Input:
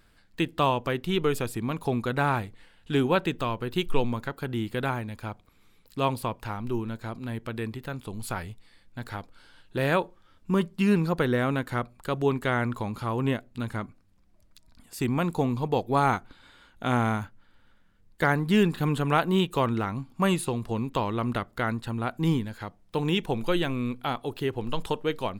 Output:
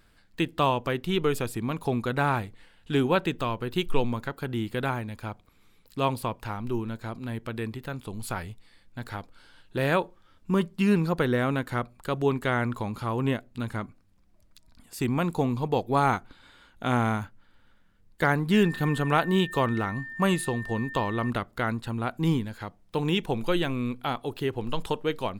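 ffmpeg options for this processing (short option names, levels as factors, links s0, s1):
-filter_complex "[0:a]asettb=1/sr,asplit=3[s0][s1][s2];[s0]atrim=end=18.534[s3];[s1]atrim=start=18.53:end=21.3,asetpts=PTS-STARTPTS,afade=t=in:d=0.004:c=qsin,afade=t=out:st=2.766:d=0.004:c=qsin,aeval=exprs='val(0)+0.0141*sin(2*PI*1800*n/s)':c=same[s4];[s2]atrim=start=21.296[s5];[s3][s4]acrossfade=d=0.004:c1=hsin:c2=qsin[s6];[s6][s5]acrossfade=d=0.004:c1=qsin:c2=hsin"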